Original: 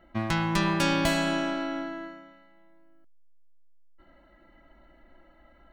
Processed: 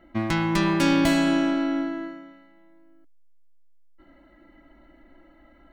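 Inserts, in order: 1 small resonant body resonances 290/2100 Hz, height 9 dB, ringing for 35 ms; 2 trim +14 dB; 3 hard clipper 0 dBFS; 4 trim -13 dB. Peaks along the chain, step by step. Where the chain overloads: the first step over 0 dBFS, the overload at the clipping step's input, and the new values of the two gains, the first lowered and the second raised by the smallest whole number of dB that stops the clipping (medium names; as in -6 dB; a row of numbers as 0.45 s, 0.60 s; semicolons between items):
-8.0 dBFS, +6.0 dBFS, 0.0 dBFS, -13.0 dBFS; step 2, 6.0 dB; step 2 +8 dB, step 4 -7 dB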